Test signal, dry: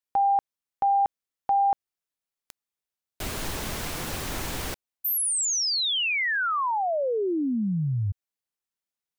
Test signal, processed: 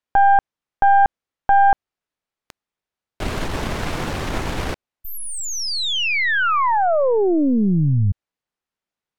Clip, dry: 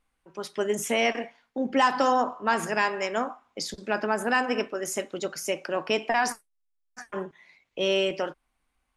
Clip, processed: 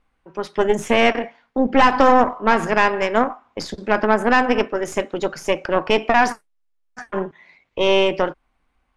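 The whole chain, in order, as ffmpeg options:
-af "aeval=exprs='0.355*sin(PI/2*1.41*val(0)/0.355)':c=same,aeval=exprs='0.376*(cos(1*acos(clip(val(0)/0.376,-1,1)))-cos(1*PI/2))+0.15*(cos(2*acos(clip(val(0)/0.376,-1,1)))-cos(2*PI/2))+0.0106*(cos(3*acos(clip(val(0)/0.376,-1,1)))-cos(3*PI/2))':c=same,aemphasis=mode=reproduction:type=75fm,volume=2dB"

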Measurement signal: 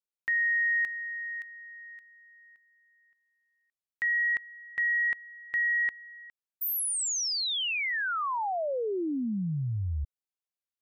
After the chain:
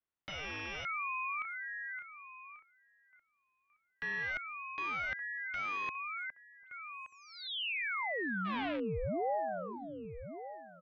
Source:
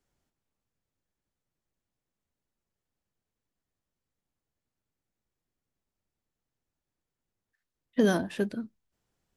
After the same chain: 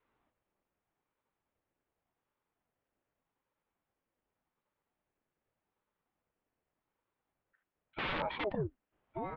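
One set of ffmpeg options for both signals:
-filter_complex "[0:a]equalizer=f=660:w=0.35:g=7.5,asplit=2[a][b];[b]asoftclip=type=tanh:threshold=-20dB,volume=-10dB[c];[a][c]amix=inputs=2:normalize=0,asplit=2[d][e];[e]adelay=1172,lowpass=f=2.1k:p=1,volume=-20dB,asplit=2[f][g];[g]adelay=1172,lowpass=f=2.1k:p=1,volume=0.22[h];[d][f][h]amix=inputs=3:normalize=0,aeval=exprs='(mod(7.94*val(0)+1,2)-1)/7.94':c=same,highpass=f=190:t=q:w=0.5412,highpass=f=190:t=q:w=1.307,lowpass=f=3.1k:t=q:w=0.5176,lowpass=f=3.1k:t=q:w=0.7071,lowpass=f=3.1k:t=q:w=1.932,afreqshift=-98,areverse,acompressor=threshold=-36dB:ratio=6:attack=46:release=24:knee=6:detection=rms,areverse,adynamicequalizer=threshold=0.00251:dfrequency=120:dqfactor=1.6:tfrequency=120:tqfactor=1.6:attack=5:release=100:ratio=0.375:range=2:mode=boostabove:tftype=bell,aeval=exprs='val(0)*sin(2*PI*420*n/s+420*0.75/0.85*sin(2*PI*0.85*n/s))':c=same"

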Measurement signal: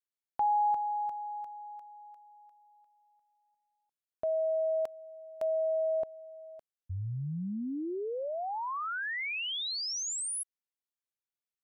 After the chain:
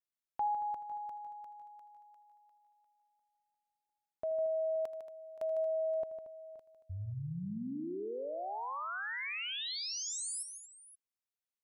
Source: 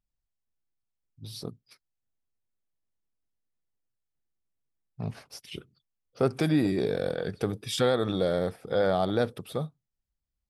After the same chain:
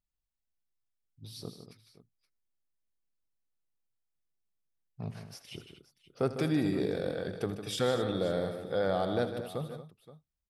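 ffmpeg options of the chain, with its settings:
-af "aecho=1:1:80|153|229|523:0.178|0.335|0.211|0.133,volume=-5dB"

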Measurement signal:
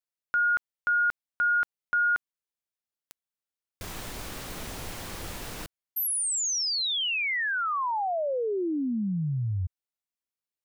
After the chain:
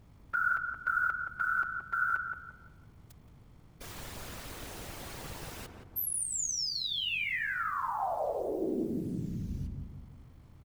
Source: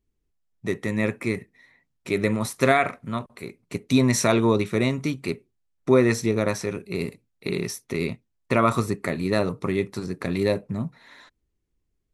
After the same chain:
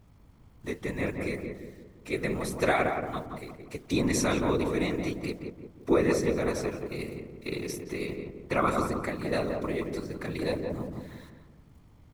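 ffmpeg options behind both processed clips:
-filter_complex "[0:a]equalizer=f=150:t=o:w=1.4:g=-5,aeval=exprs='val(0)+0.00282*(sin(2*PI*50*n/s)+sin(2*PI*2*50*n/s)/2+sin(2*PI*3*50*n/s)/3+sin(2*PI*4*50*n/s)/4+sin(2*PI*5*50*n/s)/5)':c=same,acrusher=bits=8:mix=0:aa=0.000001,afftfilt=real='hypot(re,im)*cos(2*PI*random(0))':imag='hypot(re,im)*sin(2*PI*random(1))':win_size=512:overlap=0.75,asplit=2[a][b];[b]adelay=173,lowpass=f=1.1k:p=1,volume=-3dB,asplit=2[c][d];[d]adelay=173,lowpass=f=1.1k:p=1,volume=0.49,asplit=2[e][f];[f]adelay=173,lowpass=f=1.1k:p=1,volume=0.49,asplit=2[g][h];[h]adelay=173,lowpass=f=1.1k:p=1,volume=0.49,asplit=2[i][j];[j]adelay=173,lowpass=f=1.1k:p=1,volume=0.49,asplit=2[k][l];[l]adelay=173,lowpass=f=1.1k:p=1,volume=0.49[m];[c][e][g][i][k][m]amix=inputs=6:normalize=0[n];[a][n]amix=inputs=2:normalize=0"

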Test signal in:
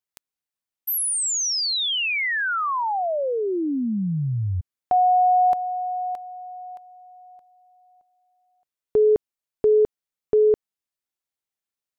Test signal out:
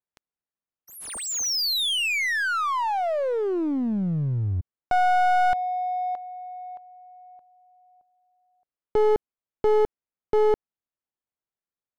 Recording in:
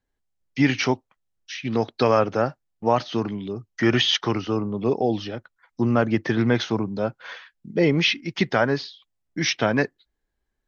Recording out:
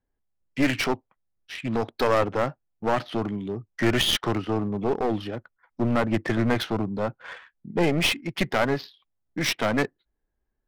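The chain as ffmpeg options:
-af "adynamicsmooth=sensitivity=4:basefreq=1.9k,aeval=exprs='clip(val(0),-1,0.0631)':c=same"

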